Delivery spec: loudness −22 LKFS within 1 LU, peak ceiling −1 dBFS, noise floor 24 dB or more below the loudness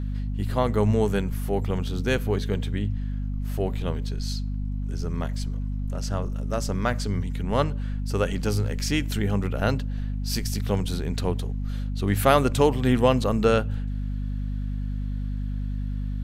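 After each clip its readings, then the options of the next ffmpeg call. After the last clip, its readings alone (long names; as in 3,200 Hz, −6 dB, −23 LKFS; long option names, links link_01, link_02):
mains hum 50 Hz; hum harmonics up to 250 Hz; level of the hum −26 dBFS; integrated loudness −26.5 LKFS; sample peak −4.5 dBFS; target loudness −22.0 LKFS
→ -af "bandreject=frequency=50:width_type=h:width=6,bandreject=frequency=100:width_type=h:width=6,bandreject=frequency=150:width_type=h:width=6,bandreject=frequency=200:width_type=h:width=6,bandreject=frequency=250:width_type=h:width=6"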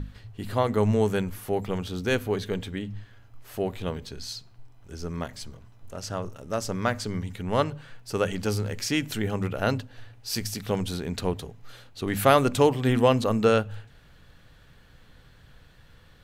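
mains hum none found; integrated loudness −27.0 LKFS; sample peak −5.0 dBFS; target loudness −22.0 LKFS
→ -af "volume=5dB,alimiter=limit=-1dB:level=0:latency=1"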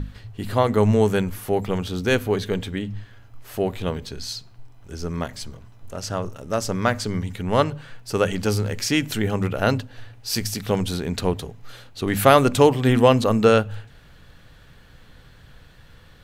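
integrated loudness −22.0 LKFS; sample peak −1.0 dBFS; background noise floor −49 dBFS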